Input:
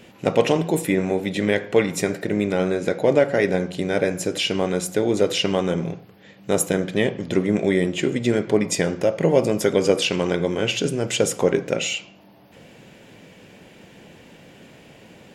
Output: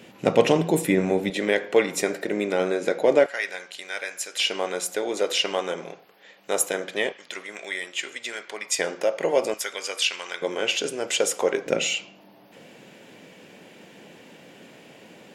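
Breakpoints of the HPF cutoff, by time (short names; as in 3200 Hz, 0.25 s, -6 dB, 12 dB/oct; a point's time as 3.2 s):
130 Hz
from 1.3 s 330 Hz
from 3.26 s 1400 Hz
from 4.4 s 570 Hz
from 7.12 s 1300 Hz
from 8.79 s 540 Hz
from 9.54 s 1400 Hz
from 10.42 s 490 Hz
from 11.66 s 200 Hz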